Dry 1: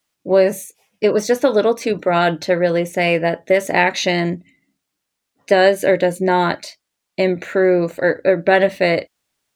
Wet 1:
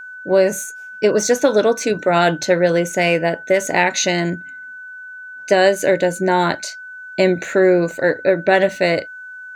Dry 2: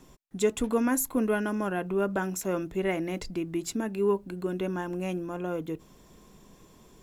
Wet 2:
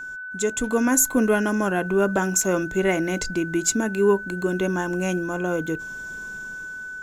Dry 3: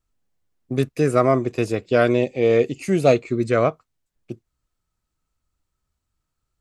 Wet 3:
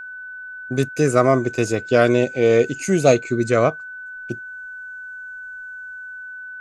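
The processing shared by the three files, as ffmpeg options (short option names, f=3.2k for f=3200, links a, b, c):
-af "equalizer=f=6.7k:w=2.4:g=11,dynaudnorm=f=210:g=7:m=8dB,aeval=exprs='val(0)+0.0282*sin(2*PI*1500*n/s)':c=same,volume=-1dB"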